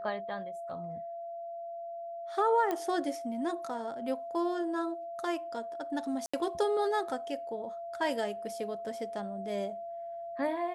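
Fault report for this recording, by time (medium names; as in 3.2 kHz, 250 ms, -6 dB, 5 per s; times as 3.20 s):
whine 680 Hz -38 dBFS
2.71 s: pop -19 dBFS
6.26–6.33 s: dropout 75 ms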